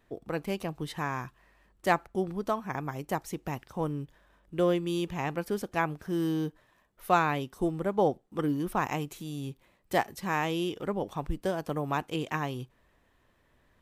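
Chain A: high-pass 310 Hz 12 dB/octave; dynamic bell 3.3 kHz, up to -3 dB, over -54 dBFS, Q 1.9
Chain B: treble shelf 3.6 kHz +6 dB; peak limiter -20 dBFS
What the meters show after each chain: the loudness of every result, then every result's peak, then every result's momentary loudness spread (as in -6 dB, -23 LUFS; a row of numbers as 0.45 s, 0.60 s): -33.0 LUFS, -33.5 LUFS; -9.5 dBFS, -20.0 dBFS; 11 LU, 7 LU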